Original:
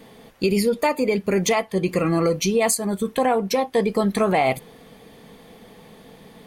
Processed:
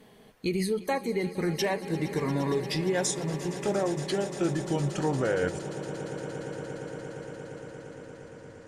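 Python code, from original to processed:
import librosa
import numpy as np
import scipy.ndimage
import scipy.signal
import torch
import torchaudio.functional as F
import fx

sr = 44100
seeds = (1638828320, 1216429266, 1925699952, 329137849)

y = fx.speed_glide(x, sr, from_pct=96, to_pct=53)
y = fx.echo_swell(y, sr, ms=116, loudest=8, wet_db=-18.0)
y = y * librosa.db_to_amplitude(-8.5)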